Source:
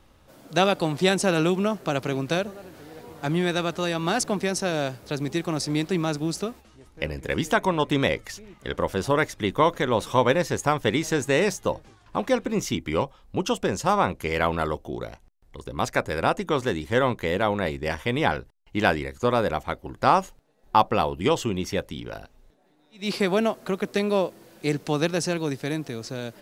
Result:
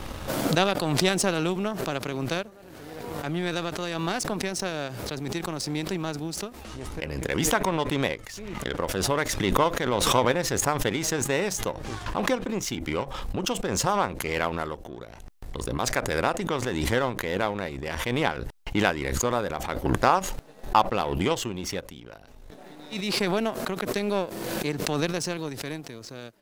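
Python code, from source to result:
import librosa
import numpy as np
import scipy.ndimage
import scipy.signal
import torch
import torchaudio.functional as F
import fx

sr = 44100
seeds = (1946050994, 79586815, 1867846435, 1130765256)

y = fx.power_curve(x, sr, exponent=1.4)
y = fx.pre_swell(y, sr, db_per_s=28.0)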